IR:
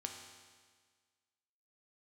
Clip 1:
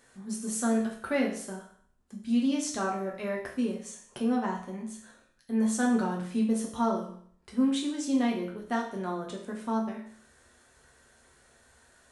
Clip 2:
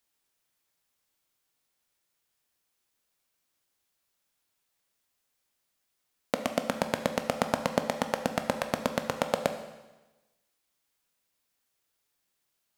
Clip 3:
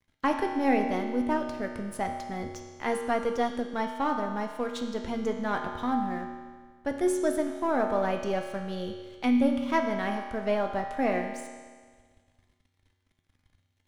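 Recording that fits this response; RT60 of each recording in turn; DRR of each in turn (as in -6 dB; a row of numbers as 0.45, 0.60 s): 3; 0.55, 1.1, 1.6 s; -2.0, 6.5, 2.0 dB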